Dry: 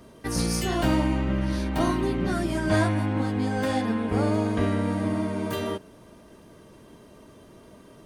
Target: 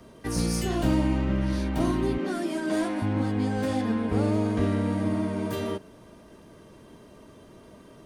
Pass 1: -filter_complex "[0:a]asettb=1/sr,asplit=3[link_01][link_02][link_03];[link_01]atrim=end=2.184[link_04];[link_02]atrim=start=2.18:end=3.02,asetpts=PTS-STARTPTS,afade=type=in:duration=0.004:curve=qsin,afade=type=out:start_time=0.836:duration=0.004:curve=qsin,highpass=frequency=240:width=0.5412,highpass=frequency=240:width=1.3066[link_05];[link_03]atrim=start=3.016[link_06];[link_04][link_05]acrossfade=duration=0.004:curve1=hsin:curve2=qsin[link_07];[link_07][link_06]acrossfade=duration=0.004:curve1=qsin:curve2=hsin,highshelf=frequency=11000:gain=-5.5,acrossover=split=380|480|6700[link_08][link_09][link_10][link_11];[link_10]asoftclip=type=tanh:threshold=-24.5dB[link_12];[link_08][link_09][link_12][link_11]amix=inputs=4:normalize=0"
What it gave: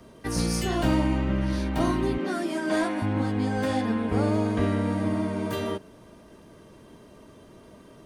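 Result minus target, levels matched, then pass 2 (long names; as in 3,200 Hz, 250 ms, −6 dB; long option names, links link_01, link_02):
soft clipping: distortion −9 dB
-filter_complex "[0:a]asettb=1/sr,asplit=3[link_01][link_02][link_03];[link_01]atrim=end=2.184[link_04];[link_02]atrim=start=2.18:end=3.02,asetpts=PTS-STARTPTS,afade=type=in:duration=0.004:curve=qsin,afade=type=out:start_time=0.836:duration=0.004:curve=qsin,highpass=frequency=240:width=0.5412,highpass=frequency=240:width=1.3066[link_05];[link_03]atrim=start=3.016[link_06];[link_04][link_05]acrossfade=duration=0.004:curve1=hsin:curve2=qsin[link_07];[link_07][link_06]acrossfade=duration=0.004:curve1=qsin:curve2=hsin,highshelf=frequency=11000:gain=-5.5,acrossover=split=380|480|6700[link_08][link_09][link_10][link_11];[link_10]asoftclip=type=tanh:threshold=-34dB[link_12];[link_08][link_09][link_12][link_11]amix=inputs=4:normalize=0"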